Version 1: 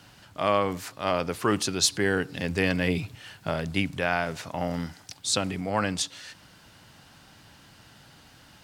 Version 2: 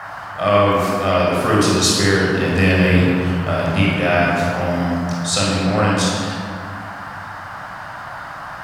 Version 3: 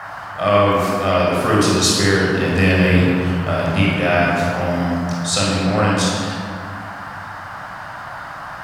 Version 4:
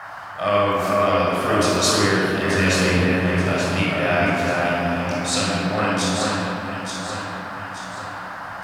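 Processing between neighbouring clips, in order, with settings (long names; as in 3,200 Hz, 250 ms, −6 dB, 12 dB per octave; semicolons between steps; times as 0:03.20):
rectangular room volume 3,100 cubic metres, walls mixed, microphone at 6.4 metres; noise in a band 630–1,700 Hz −33 dBFS; level +1 dB
no processing that can be heard
low-shelf EQ 270 Hz −5.5 dB; on a send: delay that swaps between a low-pass and a high-pass 440 ms, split 2,400 Hz, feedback 64%, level −2 dB; on the sum: level −3.5 dB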